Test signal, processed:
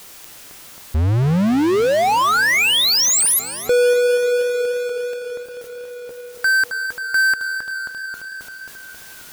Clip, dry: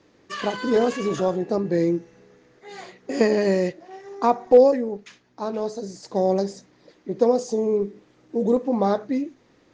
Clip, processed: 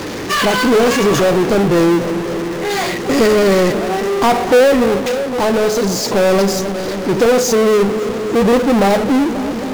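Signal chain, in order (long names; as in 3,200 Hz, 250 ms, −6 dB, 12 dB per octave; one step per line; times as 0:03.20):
feedback echo with a low-pass in the loop 268 ms, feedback 58%, low-pass 1,400 Hz, level −22 dB
power curve on the samples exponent 0.35
feedback echo with a swinging delay time 284 ms, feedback 70%, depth 90 cents, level −20.5 dB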